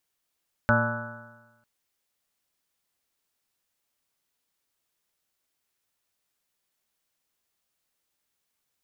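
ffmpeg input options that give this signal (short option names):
-f lavfi -i "aevalsrc='0.075*pow(10,-3*t/1.15)*sin(2*PI*114.19*t)+0.0668*pow(10,-3*t/1.15)*sin(2*PI*229.5*t)+0.00841*pow(10,-3*t/1.15)*sin(2*PI*347.04*t)+0.00891*pow(10,-3*t/1.15)*sin(2*PI*467.88*t)+0.0708*pow(10,-3*t/1.15)*sin(2*PI*593.05*t)+0.01*pow(10,-3*t/1.15)*sin(2*PI*723.49*t)+0.0398*pow(10,-3*t/1.15)*sin(2*PI*860.1*t)+0.02*pow(10,-3*t/1.15)*sin(2*PI*1003.7*t)+0.0251*pow(10,-3*t/1.15)*sin(2*PI*1155.01*t)+0.0501*pow(10,-3*t/1.15)*sin(2*PI*1314.71*t)+0.0944*pow(10,-3*t/1.15)*sin(2*PI*1483.38*t)+0.0133*pow(10,-3*t/1.15)*sin(2*PI*1661.54*t)':d=0.95:s=44100"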